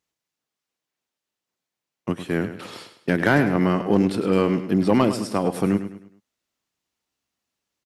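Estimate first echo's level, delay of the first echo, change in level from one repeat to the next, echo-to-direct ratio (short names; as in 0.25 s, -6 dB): -11.0 dB, 0.104 s, -8.5 dB, -10.5 dB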